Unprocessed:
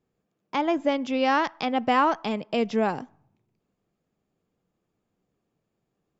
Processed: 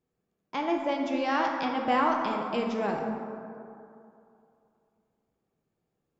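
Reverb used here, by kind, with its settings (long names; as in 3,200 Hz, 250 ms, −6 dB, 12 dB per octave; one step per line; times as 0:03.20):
dense smooth reverb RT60 2.6 s, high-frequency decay 0.4×, DRR 0.5 dB
level −6 dB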